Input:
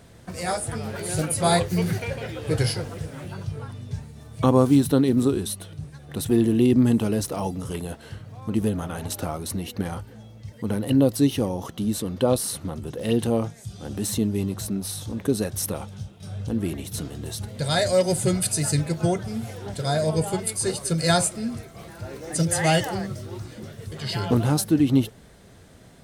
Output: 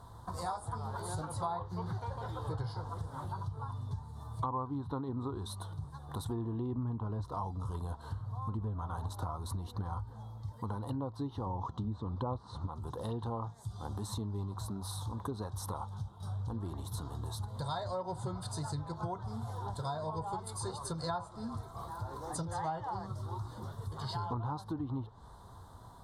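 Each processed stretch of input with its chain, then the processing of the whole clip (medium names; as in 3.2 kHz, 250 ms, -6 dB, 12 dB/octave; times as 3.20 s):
6.78–10.13 s: bass shelf 140 Hz +8 dB + band-stop 850 Hz, Q 22
11.46–12.67 s: low-pass 8 kHz 24 dB/octave + bass shelf 400 Hz +8.5 dB
whole clip: low-pass that closes with the level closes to 2.2 kHz, closed at -15 dBFS; FFT filter 110 Hz 0 dB, 170 Hz -10 dB, 610 Hz -8 dB, 990 Hz +12 dB, 2.5 kHz -29 dB, 3.7 kHz -5 dB, 5.7 kHz -12 dB, 9.7 kHz -8 dB, 15 kHz -3 dB; compression 4:1, threshold -36 dBFS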